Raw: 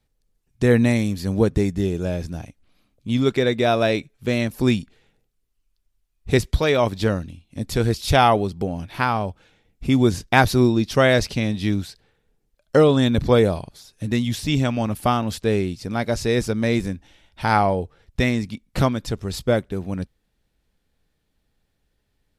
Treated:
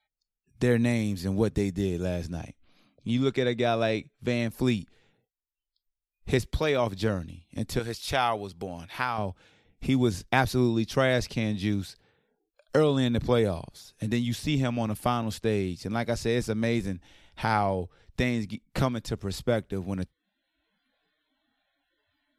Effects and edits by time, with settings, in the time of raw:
0:02.26–0:04.39: low-pass filter 9,700 Hz
0:07.79–0:09.18: low-shelf EQ 500 Hz −11.5 dB
whole clip: noise reduction from a noise print of the clip's start 29 dB; multiband upward and downward compressor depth 40%; level −6.5 dB

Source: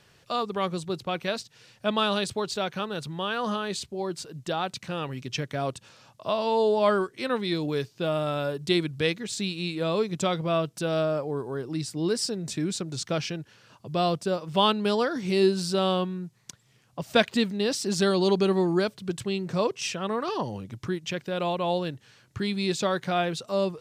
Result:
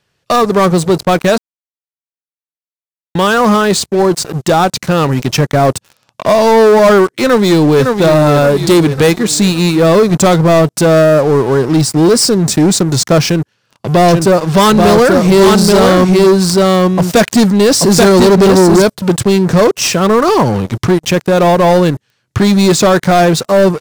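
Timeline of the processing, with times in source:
0:01.38–0:03.15: silence
0:07.22–0:07.87: delay throw 560 ms, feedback 45%, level −7.5 dB
0:13.25–0:18.82: single-tap delay 833 ms −3 dB
whole clip: leveller curve on the samples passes 5; dynamic equaliser 3,000 Hz, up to −7 dB, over −32 dBFS, Q 1.1; level +4.5 dB

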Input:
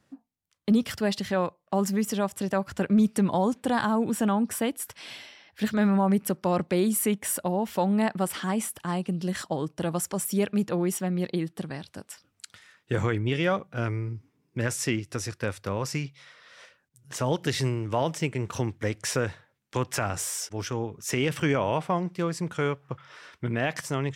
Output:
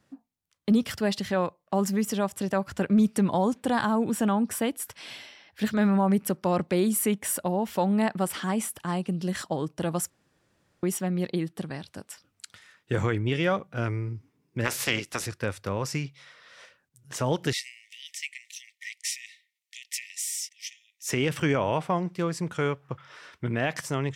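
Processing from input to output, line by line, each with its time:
0:10.10–0:10.83: fill with room tone
0:14.64–0:15.25: ceiling on every frequency bin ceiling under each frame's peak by 21 dB
0:17.53–0:21.07: linear-phase brick-wall high-pass 1,800 Hz

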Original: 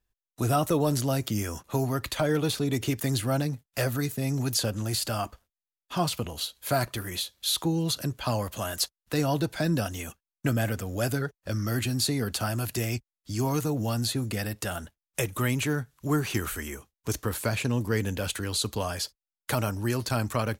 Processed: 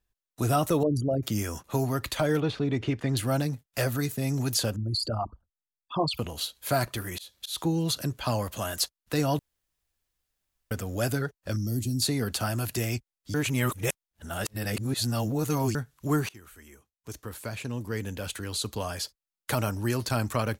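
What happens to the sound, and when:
0:00.83–0:01.23: spectral envelope exaggerated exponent 3
0:02.40–0:03.17: low-pass filter 2,800 Hz
0:04.76–0:06.19: spectral envelope exaggerated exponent 3
0:06.98–0:07.63: volume swells 168 ms
0:09.39–0:10.71: fill with room tone
0:11.56–0:12.02: drawn EQ curve 280 Hz 0 dB, 1,600 Hz −27 dB, 5,700 Hz −2 dB
0:13.34–0:15.75: reverse
0:16.29–0:19.67: fade in, from −23.5 dB

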